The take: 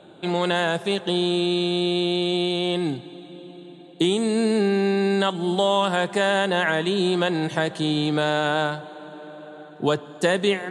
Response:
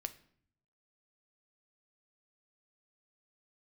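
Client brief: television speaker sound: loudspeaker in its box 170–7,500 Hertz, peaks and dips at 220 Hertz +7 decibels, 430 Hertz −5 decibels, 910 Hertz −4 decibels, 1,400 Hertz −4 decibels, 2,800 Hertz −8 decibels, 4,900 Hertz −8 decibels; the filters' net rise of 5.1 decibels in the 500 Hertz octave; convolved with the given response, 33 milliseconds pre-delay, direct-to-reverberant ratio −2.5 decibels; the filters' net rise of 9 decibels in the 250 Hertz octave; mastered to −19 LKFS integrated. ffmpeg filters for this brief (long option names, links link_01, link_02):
-filter_complex "[0:a]equalizer=frequency=250:width_type=o:gain=8,equalizer=frequency=500:width_type=o:gain=6.5,asplit=2[link_01][link_02];[1:a]atrim=start_sample=2205,adelay=33[link_03];[link_02][link_03]afir=irnorm=-1:irlink=0,volume=4.5dB[link_04];[link_01][link_04]amix=inputs=2:normalize=0,highpass=frequency=170:width=0.5412,highpass=frequency=170:width=1.3066,equalizer=frequency=220:width_type=q:width=4:gain=7,equalizer=frequency=430:width_type=q:width=4:gain=-5,equalizer=frequency=910:width_type=q:width=4:gain=-4,equalizer=frequency=1400:width_type=q:width=4:gain=-4,equalizer=frequency=2800:width_type=q:width=4:gain=-8,equalizer=frequency=4900:width_type=q:width=4:gain=-8,lowpass=frequency=7500:width=0.5412,lowpass=frequency=7500:width=1.3066,volume=-6.5dB"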